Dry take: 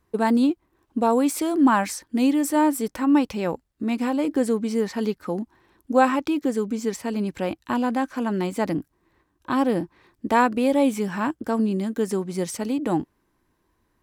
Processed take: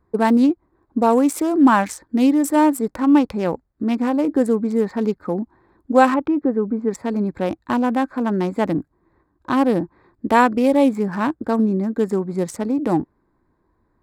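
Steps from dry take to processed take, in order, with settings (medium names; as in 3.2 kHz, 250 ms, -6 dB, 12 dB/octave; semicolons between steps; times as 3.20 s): local Wiener filter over 15 samples; 6.14–6.91 s: low-pass 1.7 kHz 12 dB/octave; trim +4.5 dB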